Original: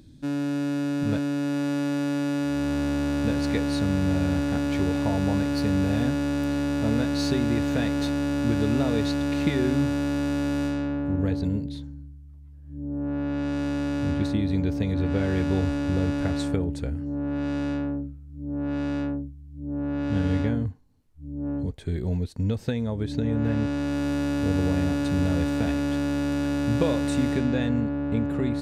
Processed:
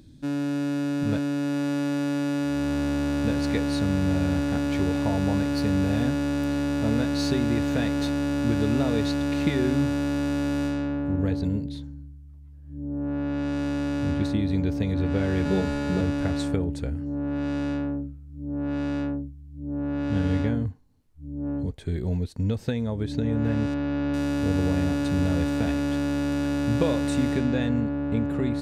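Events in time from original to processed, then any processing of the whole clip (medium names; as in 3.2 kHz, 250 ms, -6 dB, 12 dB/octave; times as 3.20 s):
15.45–16.01 s: comb 4.8 ms, depth 89%
23.74–24.14 s: Gaussian low-pass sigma 2.2 samples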